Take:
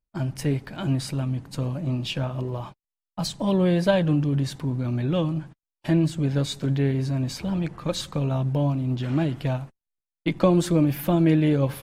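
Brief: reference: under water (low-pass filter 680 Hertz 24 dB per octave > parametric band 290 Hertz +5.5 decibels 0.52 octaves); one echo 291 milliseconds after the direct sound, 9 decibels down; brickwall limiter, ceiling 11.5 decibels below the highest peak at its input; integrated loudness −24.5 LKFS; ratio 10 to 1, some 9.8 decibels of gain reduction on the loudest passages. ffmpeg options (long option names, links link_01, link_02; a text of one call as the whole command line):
ffmpeg -i in.wav -af "acompressor=threshold=-24dB:ratio=10,alimiter=limit=-23dB:level=0:latency=1,lowpass=frequency=680:width=0.5412,lowpass=frequency=680:width=1.3066,equalizer=frequency=290:width_type=o:width=0.52:gain=5.5,aecho=1:1:291:0.355,volume=6dB" out.wav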